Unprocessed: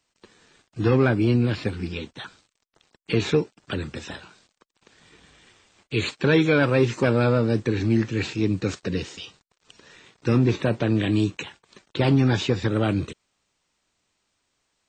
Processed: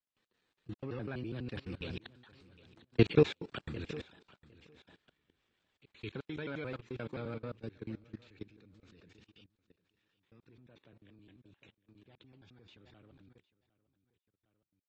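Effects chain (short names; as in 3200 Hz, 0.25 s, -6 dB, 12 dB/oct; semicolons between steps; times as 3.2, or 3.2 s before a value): slices in reverse order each 85 ms, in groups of 2; Doppler pass-by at 2.99, 10 m/s, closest 5.1 m; resonant high shelf 4900 Hz -6 dB, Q 1.5; on a send: feedback echo 0.757 s, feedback 19%, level -15.5 dB; on the sum: level quantiser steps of 20 dB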